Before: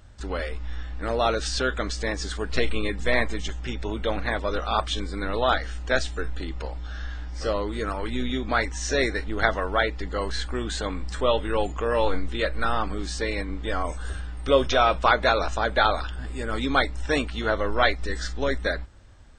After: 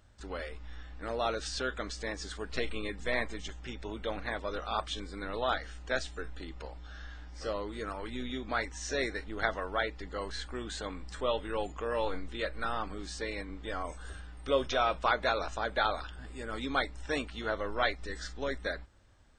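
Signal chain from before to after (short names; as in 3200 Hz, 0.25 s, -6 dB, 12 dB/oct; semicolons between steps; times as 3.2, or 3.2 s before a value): low shelf 150 Hz -5 dB; gain -8.5 dB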